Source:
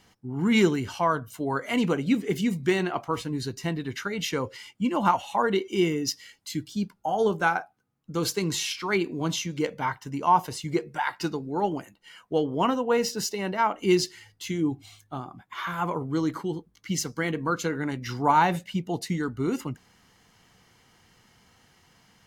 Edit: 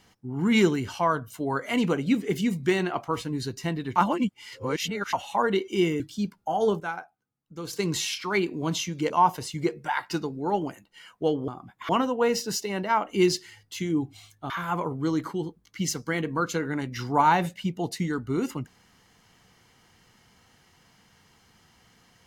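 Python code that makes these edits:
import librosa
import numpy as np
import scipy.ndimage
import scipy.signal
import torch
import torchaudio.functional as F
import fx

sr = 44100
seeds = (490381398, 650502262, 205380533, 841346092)

y = fx.edit(x, sr, fx.reverse_span(start_s=3.96, length_s=1.17),
    fx.cut(start_s=6.0, length_s=0.58),
    fx.clip_gain(start_s=7.38, length_s=0.93, db=-9.0),
    fx.cut(start_s=9.68, length_s=0.52),
    fx.move(start_s=15.19, length_s=0.41, to_s=12.58), tone=tone)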